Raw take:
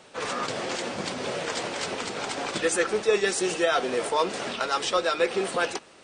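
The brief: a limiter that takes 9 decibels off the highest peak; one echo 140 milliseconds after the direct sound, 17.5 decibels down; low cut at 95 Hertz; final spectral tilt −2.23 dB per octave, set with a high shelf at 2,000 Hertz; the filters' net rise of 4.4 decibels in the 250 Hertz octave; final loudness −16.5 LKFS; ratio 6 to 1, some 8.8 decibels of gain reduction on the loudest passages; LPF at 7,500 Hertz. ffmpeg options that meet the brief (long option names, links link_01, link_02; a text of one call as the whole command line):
ffmpeg -i in.wav -af "highpass=95,lowpass=7500,equalizer=frequency=250:width_type=o:gain=6.5,highshelf=frequency=2000:gain=7,acompressor=threshold=-24dB:ratio=6,alimiter=limit=-21dB:level=0:latency=1,aecho=1:1:140:0.133,volume=13.5dB" out.wav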